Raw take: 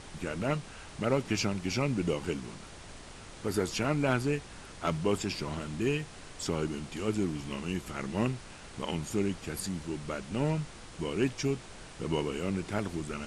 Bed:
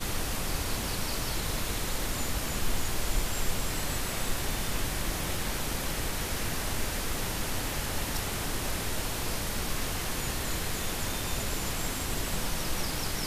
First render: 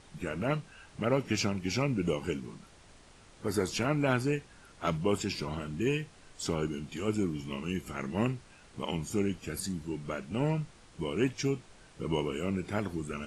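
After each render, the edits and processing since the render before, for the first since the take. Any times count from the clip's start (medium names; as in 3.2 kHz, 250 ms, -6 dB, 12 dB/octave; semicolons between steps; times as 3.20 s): noise print and reduce 9 dB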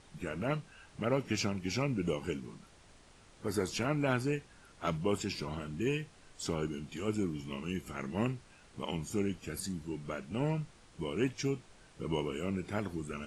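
trim -3 dB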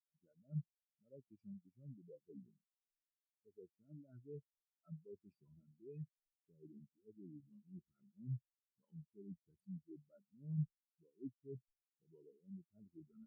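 reverse; compression 8:1, threshold -42 dBFS, peak gain reduction 16.5 dB; reverse; spectral contrast expander 4:1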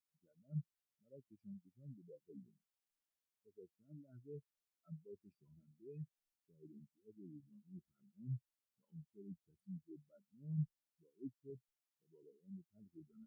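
11.50–12.23 s: bass shelf 180 Hz -9.5 dB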